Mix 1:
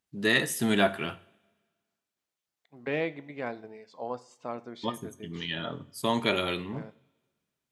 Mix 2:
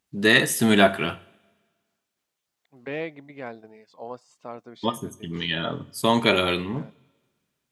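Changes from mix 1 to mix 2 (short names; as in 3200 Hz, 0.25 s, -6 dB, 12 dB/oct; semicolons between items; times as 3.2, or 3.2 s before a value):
first voice +7.0 dB; second voice: send off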